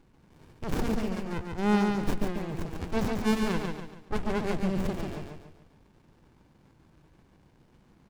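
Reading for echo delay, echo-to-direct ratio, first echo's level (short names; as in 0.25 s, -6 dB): 0.142 s, -3.5 dB, -4.0 dB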